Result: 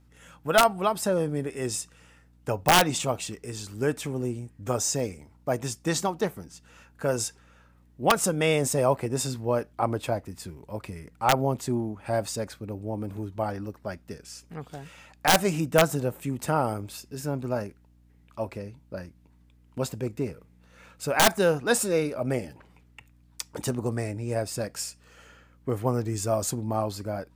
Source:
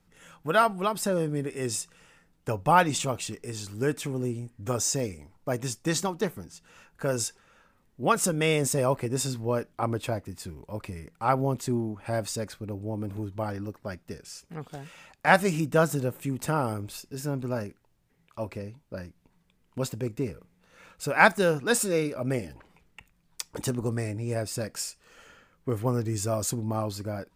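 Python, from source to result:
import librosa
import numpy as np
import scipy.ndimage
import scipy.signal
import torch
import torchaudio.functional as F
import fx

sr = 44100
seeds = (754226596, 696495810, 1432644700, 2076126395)

y = scipy.signal.sosfilt(scipy.signal.butter(2, 72.0, 'highpass', fs=sr, output='sos'), x)
y = fx.add_hum(y, sr, base_hz=60, snr_db=29)
y = (np.mod(10.0 ** (11.0 / 20.0) * y + 1.0, 2.0) - 1.0) / 10.0 ** (11.0 / 20.0)
y = fx.dynamic_eq(y, sr, hz=730.0, q=1.7, threshold_db=-41.0, ratio=4.0, max_db=5)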